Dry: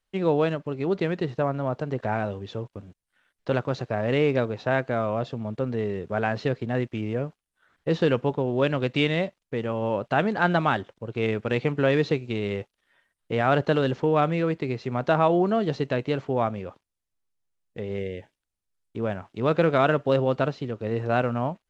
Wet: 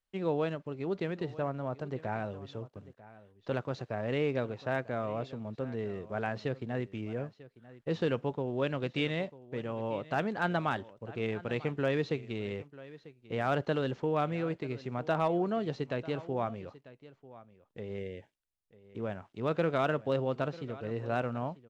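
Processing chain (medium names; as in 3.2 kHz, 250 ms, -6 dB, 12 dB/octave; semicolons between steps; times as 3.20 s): delay 944 ms -18.5 dB; hard clipper -10.5 dBFS, distortion -33 dB; trim -8.5 dB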